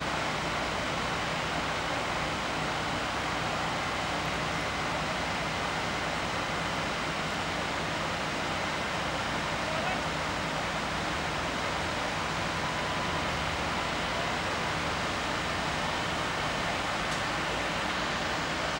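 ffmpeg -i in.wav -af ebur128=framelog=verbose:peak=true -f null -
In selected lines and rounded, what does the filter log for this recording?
Integrated loudness:
  I:         -30.4 LUFS
  Threshold: -40.4 LUFS
Loudness range:
  LRA:         0.7 LU
  Threshold: -50.4 LUFS
  LRA low:   -30.7 LUFS
  LRA high:  -30.0 LUFS
True peak:
  Peak:      -17.5 dBFS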